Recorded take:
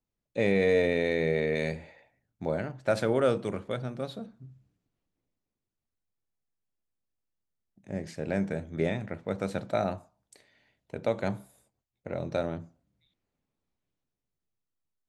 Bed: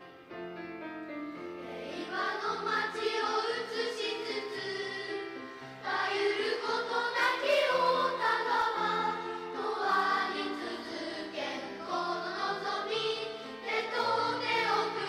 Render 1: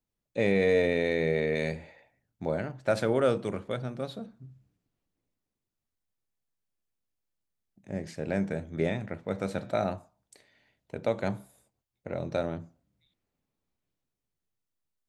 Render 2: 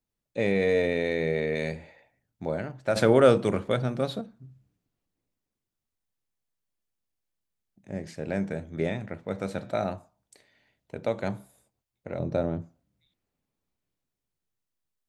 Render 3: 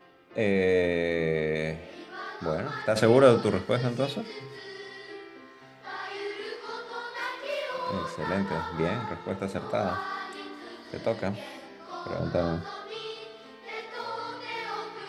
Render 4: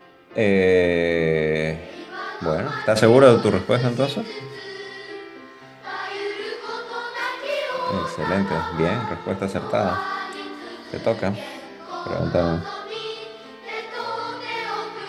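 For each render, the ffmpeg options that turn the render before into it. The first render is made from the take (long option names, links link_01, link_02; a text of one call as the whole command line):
ffmpeg -i in.wav -filter_complex "[0:a]asettb=1/sr,asplit=3[link_01][link_02][link_03];[link_01]atrim=end=9.264[link_04];[link_02]atrim=start=9.26:end=9.86,asetpts=PTS-STARTPTS,afade=type=in:duration=0.004:curve=qsin,afade=type=out:start_time=0.596:duration=0.004:curve=qsin,bandreject=frequency=118.3:width_type=h:width=4,bandreject=frequency=236.6:width_type=h:width=4,bandreject=frequency=354.9:width_type=h:width=4,bandreject=frequency=473.2:width_type=h:width=4,bandreject=frequency=591.5:width_type=h:width=4,bandreject=frequency=709.8:width_type=h:width=4,bandreject=frequency=828.1:width_type=h:width=4,bandreject=frequency=946.4:width_type=h:width=4,bandreject=frequency=1064.7:width_type=h:width=4,bandreject=frequency=1183:width_type=h:width=4,bandreject=frequency=1301.3:width_type=h:width=4,bandreject=frequency=1419.6:width_type=h:width=4,bandreject=frequency=1537.9:width_type=h:width=4,bandreject=frequency=1656.2:width_type=h:width=4,bandreject=frequency=1774.5:width_type=h:width=4,bandreject=frequency=1892.8:width_type=h:width=4,bandreject=frequency=2011.1:width_type=h:width=4,bandreject=frequency=2129.4:width_type=h:width=4,bandreject=frequency=2247.7:width_type=h:width=4,bandreject=frequency=2366:width_type=h:width=4,bandreject=frequency=2484.3:width_type=h:width=4,bandreject=frequency=2602.6:width_type=h:width=4,bandreject=frequency=2720.9:width_type=h:width=4,bandreject=frequency=2839.2:width_type=h:width=4,bandreject=frequency=2957.5:width_type=h:width=4,bandreject=frequency=3075.8:width_type=h:width=4,bandreject=frequency=3194.1:width_type=h:width=4,bandreject=frequency=3312.4:width_type=h:width=4,bandreject=frequency=3430.7:width_type=h:width=4,bandreject=frequency=3549:width_type=h:width=4,bandreject=frequency=3667.3:width_type=h:width=4,bandreject=frequency=3785.6:width_type=h:width=4,bandreject=frequency=3903.9:width_type=h:width=4[link_05];[link_03]atrim=start=9.856[link_06];[link_04][link_05]acrossfade=duration=0.004:curve1=hsin:curve2=qsin[link_07];[link_07][link_06]acrossfade=duration=0.004:curve1=qsin:curve2=hsin" out.wav
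ffmpeg -i in.wav -filter_complex "[0:a]asettb=1/sr,asplit=3[link_01][link_02][link_03];[link_01]atrim=end=12.194[link_04];[link_02]atrim=start=12.19:end=12.62,asetpts=PTS-STARTPTS,afade=type=in:duration=0.004:curve=qsin,afade=type=out:start_time=0.426:duration=0.004:curve=qsin,tiltshelf=frequency=900:gain=6[link_05];[link_03]atrim=start=12.616[link_06];[link_04][link_05]acrossfade=duration=0.004:curve1=hsin:curve2=qsin[link_07];[link_07][link_06]acrossfade=duration=0.004:curve1=qsin:curve2=hsin,asplit=3[link_08][link_09][link_10];[link_08]atrim=end=2.962[link_11];[link_09]atrim=start=2.958:end=4.212,asetpts=PTS-STARTPTS,volume=7dB[link_12];[link_10]atrim=start=4.208[link_13];[link_11][link_12]acrossfade=duration=0.004:curve1=hsin:curve2=hsin[link_14];[link_14][link_13]acrossfade=duration=0.004:curve1=hsin:curve2=hsin" out.wav
ffmpeg -i in.wav -i bed.wav -filter_complex "[1:a]volume=-5.5dB[link_01];[0:a][link_01]amix=inputs=2:normalize=0" out.wav
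ffmpeg -i in.wav -af "volume=7dB,alimiter=limit=-2dB:level=0:latency=1" out.wav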